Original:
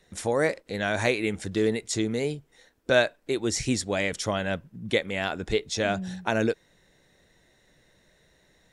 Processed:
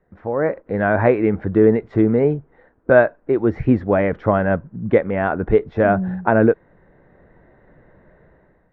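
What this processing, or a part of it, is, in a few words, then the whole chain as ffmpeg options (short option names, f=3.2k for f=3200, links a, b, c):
action camera in a waterproof case: -af "lowpass=f=1.5k:w=0.5412,lowpass=f=1.5k:w=1.3066,dynaudnorm=f=150:g=7:m=13.5dB" -ar 22050 -c:a aac -b:a 96k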